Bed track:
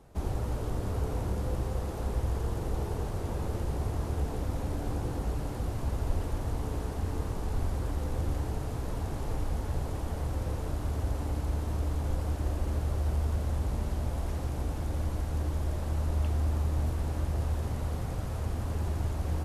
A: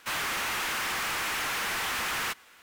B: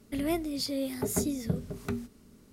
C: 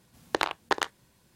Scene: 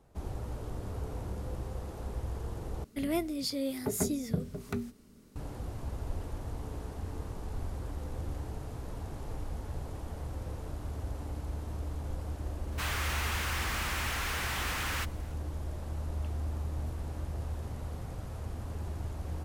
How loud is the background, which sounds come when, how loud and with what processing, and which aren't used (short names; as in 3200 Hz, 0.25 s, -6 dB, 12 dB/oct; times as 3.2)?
bed track -6.5 dB
2.84 replace with B -1.5 dB
12.72 add A -4.5 dB
not used: C